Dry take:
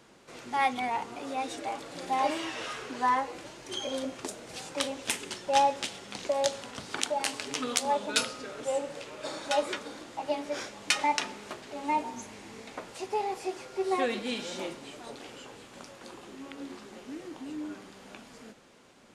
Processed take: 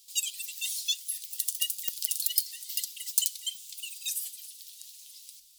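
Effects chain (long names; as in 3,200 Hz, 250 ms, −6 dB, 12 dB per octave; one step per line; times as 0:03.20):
change of speed 3.43×
inverse Chebyshev band-stop filter 140–1,500 Hz, stop band 50 dB
high-shelf EQ 5,200 Hz +7.5 dB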